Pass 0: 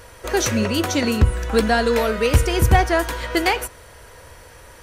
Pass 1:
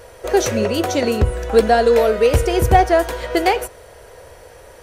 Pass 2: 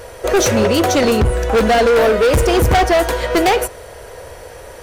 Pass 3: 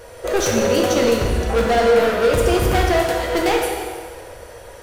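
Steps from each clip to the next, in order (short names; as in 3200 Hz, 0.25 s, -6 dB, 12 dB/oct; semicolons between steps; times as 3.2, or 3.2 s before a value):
band shelf 540 Hz +8 dB 1.3 oct; gain -1.5 dB
overloaded stage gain 17 dB; gain +7 dB
plate-style reverb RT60 1.7 s, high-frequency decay 0.95×, pre-delay 0 ms, DRR -0.5 dB; gain -7 dB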